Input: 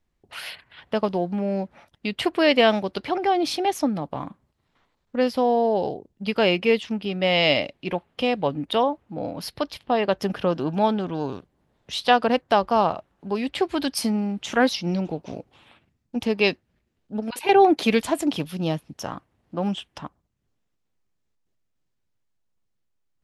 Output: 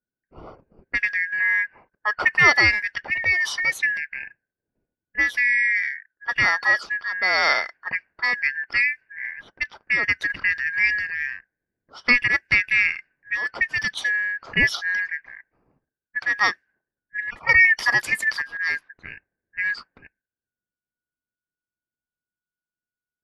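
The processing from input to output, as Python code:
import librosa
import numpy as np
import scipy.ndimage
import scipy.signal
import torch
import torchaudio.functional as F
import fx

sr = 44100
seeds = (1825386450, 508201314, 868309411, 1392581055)

y = fx.band_shuffle(x, sr, order='2143')
y = fx.env_lowpass(y, sr, base_hz=330.0, full_db=-19.5)
y = fx.peak_eq(y, sr, hz=1100.0, db=9.0, octaves=1.3, at=(1.4, 2.5))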